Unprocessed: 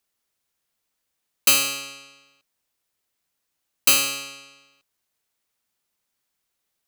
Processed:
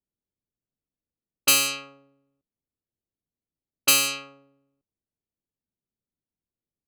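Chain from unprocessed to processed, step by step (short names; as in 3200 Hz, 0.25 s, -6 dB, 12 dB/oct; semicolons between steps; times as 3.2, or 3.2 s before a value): low-pass opened by the level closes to 300 Hz, open at -16.5 dBFS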